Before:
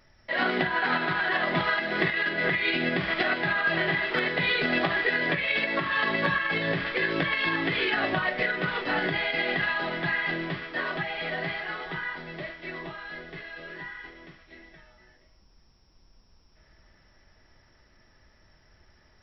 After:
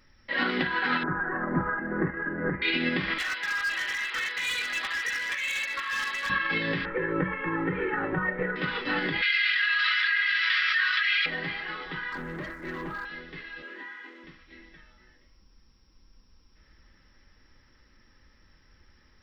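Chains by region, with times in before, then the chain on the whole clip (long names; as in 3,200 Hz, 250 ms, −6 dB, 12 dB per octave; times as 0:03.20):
0:01.03–0:02.62: elliptic low-pass filter 1,600 Hz, stop band 70 dB + spectral tilt −2 dB per octave
0:03.18–0:06.30: high-pass filter 1,100 Hz + gain into a clipping stage and back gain 26 dB
0:06.85–0:08.56: low-pass filter 1,600 Hz 24 dB per octave + parametric band 190 Hz +15 dB 0.3 octaves + comb filter 2.2 ms, depth 77%
0:09.22–0:11.26: Butterworth high-pass 1,300 Hz 48 dB per octave + high-shelf EQ 4,400 Hz +5.5 dB + envelope flattener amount 100%
0:12.12–0:13.05: Butterworth low-pass 1,800 Hz + leveller curve on the samples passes 2
0:13.62–0:14.24: converter with a step at zero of −52 dBFS + Butterworth high-pass 210 Hz 96 dB per octave + high-frequency loss of the air 180 metres
whole clip: parametric band 680 Hz −13.5 dB 0.45 octaves; comb filter 3.8 ms, depth 32%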